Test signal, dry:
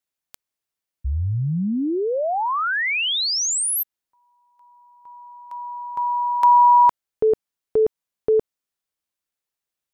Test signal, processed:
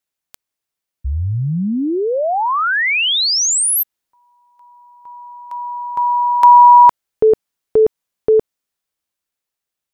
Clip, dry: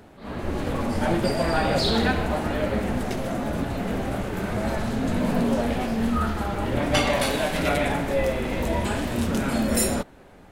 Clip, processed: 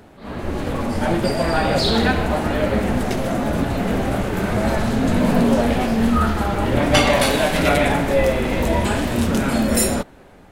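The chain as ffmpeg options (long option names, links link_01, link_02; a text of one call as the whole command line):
ffmpeg -i in.wav -af "dynaudnorm=framelen=930:gausssize=5:maxgain=4dB,volume=3dB" out.wav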